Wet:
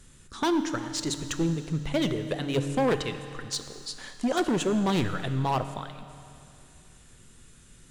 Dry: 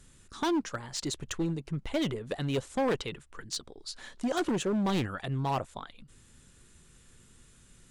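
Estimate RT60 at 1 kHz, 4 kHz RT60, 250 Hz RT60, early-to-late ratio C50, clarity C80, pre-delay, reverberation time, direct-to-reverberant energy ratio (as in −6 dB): 2.6 s, 2.6 s, 2.6 s, 10.0 dB, 10.5 dB, 7 ms, 2.6 s, 9.0 dB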